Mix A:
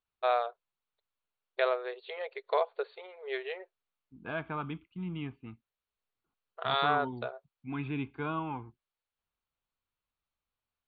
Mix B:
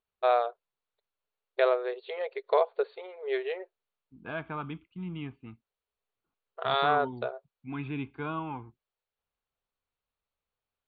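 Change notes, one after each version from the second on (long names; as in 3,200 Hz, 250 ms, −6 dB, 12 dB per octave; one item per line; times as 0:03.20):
first voice: add low-shelf EQ 500 Hz +11 dB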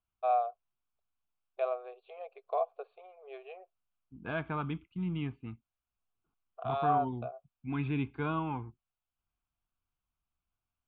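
first voice: add formant filter a
second voice: add low-shelf EQ 160 Hz +7.5 dB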